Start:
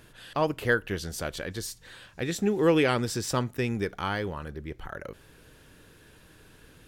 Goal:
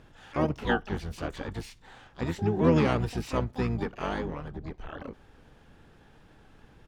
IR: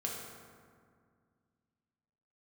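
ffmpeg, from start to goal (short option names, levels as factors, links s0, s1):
-filter_complex "[0:a]aemphasis=mode=reproduction:type=75fm,asplit=4[s0][s1][s2][s3];[s1]asetrate=22050,aresample=44100,atempo=2,volume=1[s4];[s2]asetrate=35002,aresample=44100,atempo=1.25992,volume=0.398[s5];[s3]asetrate=88200,aresample=44100,atempo=0.5,volume=0.316[s6];[s0][s4][s5][s6]amix=inputs=4:normalize=0,volume=0.596"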